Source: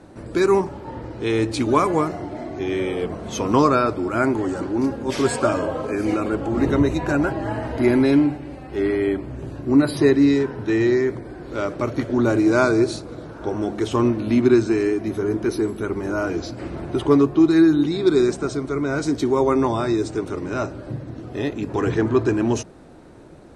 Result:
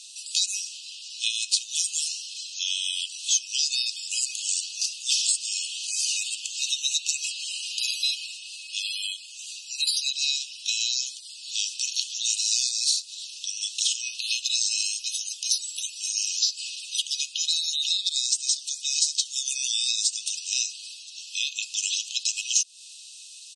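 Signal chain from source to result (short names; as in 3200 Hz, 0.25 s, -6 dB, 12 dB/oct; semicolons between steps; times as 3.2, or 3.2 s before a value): brick-wall FIR high-pass 2500 Hz; tilt +2.5 dB/oct; compressor 10:1, threshold -37 dBFS, peak gain reduction 17.5 dB; bell 5800 Hz +13 dB 2.1 oct; downsampling 22050 Hz; gain +5 dB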